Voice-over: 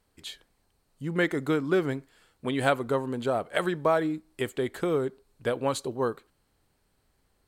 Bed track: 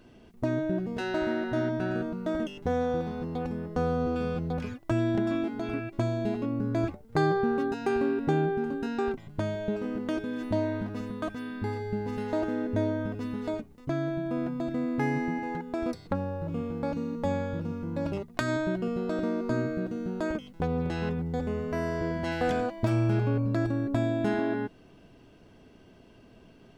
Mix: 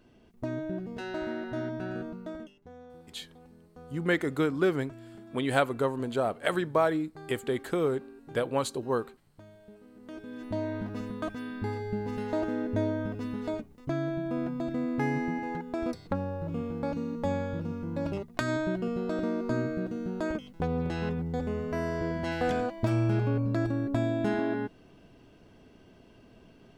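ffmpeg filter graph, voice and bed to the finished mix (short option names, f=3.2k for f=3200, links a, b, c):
-filter_complex "[0:a]adelay=2900,volume=-1dB[a];[1:a]volume=15dB,afade=t=out:st=2.1:d=0.49:silence=0.158489,afade=t=in:st=9.95:d=1:silence=0.0944061[b];[a][b]amix=inputs=2:normalize=0"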